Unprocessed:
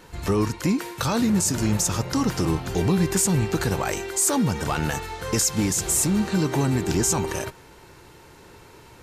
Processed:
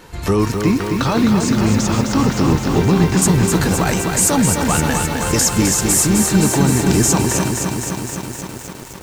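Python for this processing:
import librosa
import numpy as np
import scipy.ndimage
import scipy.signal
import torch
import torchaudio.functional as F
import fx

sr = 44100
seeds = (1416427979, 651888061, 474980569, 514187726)

y = fx.lowpass(x, sr, hz=4600.0, slope=12, at=(0.61, 3.22))
y = fx.echo_crushed(y, sr, ms=259, feedback_pct=80, bits=7, wet_db=-5)
y = F.gain(torch.from_numpy(y), 6.0).numpy()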